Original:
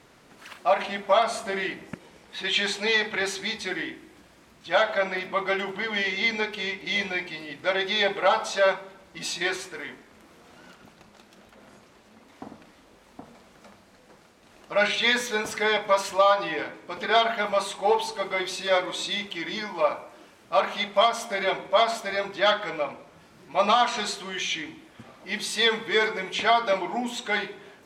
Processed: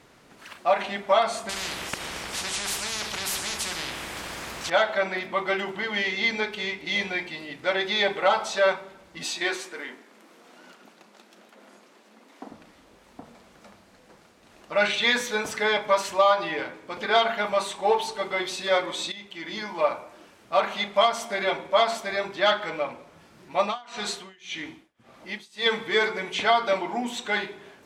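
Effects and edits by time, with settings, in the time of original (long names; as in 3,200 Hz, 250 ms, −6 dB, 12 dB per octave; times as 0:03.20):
0:01.49–0:04.70: every bin compressed towards the loudest bin 10 to 1
0:09.23–0:12.51: high-pass filter 210 Hz 24 dB per octave
0:19.12–0:19.70: fade in, from −15 dB
0:23.55–0:25.66: amplitude tremolo 1.8 Hz, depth 96%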